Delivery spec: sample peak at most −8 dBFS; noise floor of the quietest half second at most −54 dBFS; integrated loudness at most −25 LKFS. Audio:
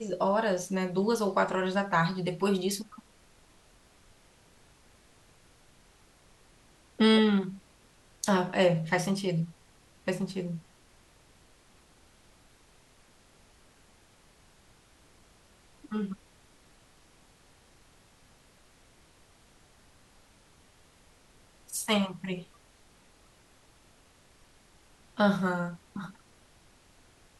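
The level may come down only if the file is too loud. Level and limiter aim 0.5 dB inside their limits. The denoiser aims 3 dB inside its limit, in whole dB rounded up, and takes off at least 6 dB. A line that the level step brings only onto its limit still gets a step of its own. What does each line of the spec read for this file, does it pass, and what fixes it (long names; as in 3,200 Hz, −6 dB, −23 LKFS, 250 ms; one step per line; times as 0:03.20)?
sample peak −12.0 dBFS: in spec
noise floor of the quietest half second −60 dBFS: in spec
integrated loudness −29.0 LKFS: in spec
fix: no processing needed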